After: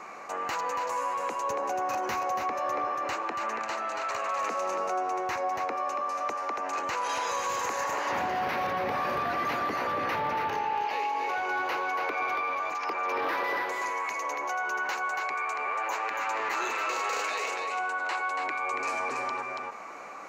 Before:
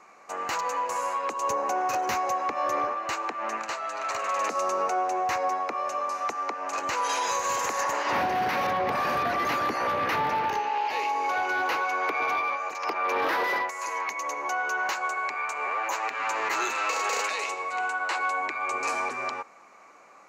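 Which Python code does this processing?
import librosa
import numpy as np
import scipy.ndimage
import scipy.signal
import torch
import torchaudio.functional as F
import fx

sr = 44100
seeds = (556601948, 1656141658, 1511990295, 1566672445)

y = fx.peak_eq(x, sr, hz=8400.0, db=-4.5, octaves=1.7)
y = y + 10.0 ** (-6.0 / 20.0) * np.pad(y, (int(282 * sr / 1000.0), 0))[:len(y)]
y = fx.env_flatten(y, sr, amount_pct=50)
y = F.gain(torch.from_numpy(y), -5.0).numpy()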